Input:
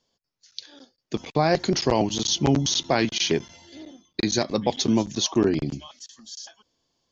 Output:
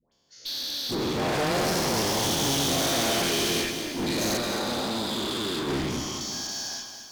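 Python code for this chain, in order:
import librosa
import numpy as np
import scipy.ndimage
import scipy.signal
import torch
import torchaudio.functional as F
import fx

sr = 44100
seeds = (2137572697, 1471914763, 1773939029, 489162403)

p1 = fx.spec_dilate(x, sr, span_ms=480)
p2 = fx.dispersion(p1, sr, late='highs', ms=122.0, hz=1000.0)
p3 = 10.0 ** (-16.0 / 20.0) * np.tanh(p2 / 10.0 ** (-16.0 / 20.0))
p4 = fx.cheby_ripple(p3, sr, hz=5100.0, ripple_db=9, at=(4.37, 5.68))
p5 = fx.clip_asym(p4, sr, top_db=-31.5, bottom_db=-20.5)
p6 = fx.cheby_harmonics(p5, sr, harmonics=(6,), levels_db=(-9,), full_scale_db=-1.5)
p7 = p6 + fx.echo_feedback(p6, sr, ms=219, feedback_pct=45, wet_db=-8.0, dry=0)
y = fx.echo_crushed(p7, sr, ms=388, feedback_pct=35, bits=7, wet_db=-14.0)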